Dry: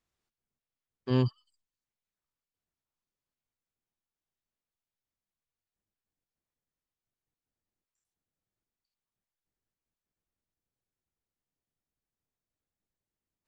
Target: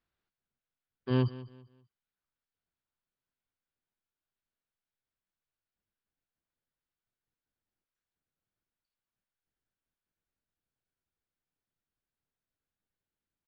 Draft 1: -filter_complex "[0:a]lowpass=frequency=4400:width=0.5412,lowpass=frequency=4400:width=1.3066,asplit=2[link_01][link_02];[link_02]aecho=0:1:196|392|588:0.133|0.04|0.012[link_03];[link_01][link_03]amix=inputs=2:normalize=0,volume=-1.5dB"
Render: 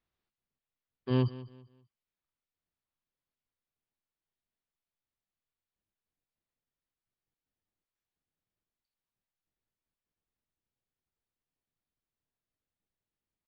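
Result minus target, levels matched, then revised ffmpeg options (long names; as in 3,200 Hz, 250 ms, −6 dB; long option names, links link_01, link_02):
2,000 Hz band −2.5 dB
-filter_complex "[0:a]lowpass=frequency=4400:width=0.5412,lowpass=frequency=4400:width=1.3066,equalizer=frequency=1500:width=5:gain=6,asplit=2[link_01][link_02];[link_02]aecho=0:1:196|392|588:0.133|0.04|0.012[link_03];[link_01][link_03]amix=inputs=2:normalize=0,volume=-1.5dB"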